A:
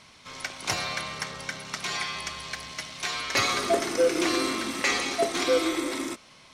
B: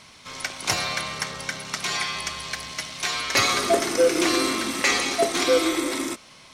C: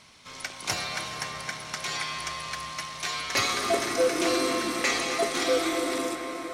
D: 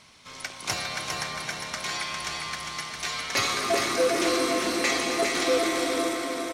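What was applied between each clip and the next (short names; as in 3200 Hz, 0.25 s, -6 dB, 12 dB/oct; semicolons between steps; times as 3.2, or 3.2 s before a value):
high shelf 7300 Hz +5 dB; gain +3.5 dB
band-limited delay 0.261 s, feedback 69%, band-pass 1000 Hz, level -8 dB; on a send at -8 dB: reverb RT60 4.3 s, pre-delay 0.244 s; on the sum: gain -5.5 dB
feedback echo 0.404 s, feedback 42%, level -5 dB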